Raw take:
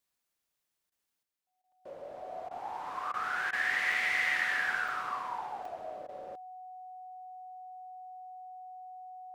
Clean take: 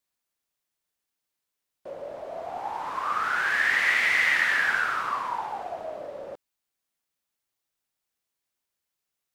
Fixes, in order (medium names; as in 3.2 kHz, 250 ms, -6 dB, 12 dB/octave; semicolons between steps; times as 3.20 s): band-stop 740 Hz, Q 30; interpolate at 1.72/3.92/4.88/5.65/6.08 s, 3.3 ms; interpolate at 0.90/1.62/2.49/3.12/3.51/6.07 s, 17 ms; gain correction +7.5 dB, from 1.23 s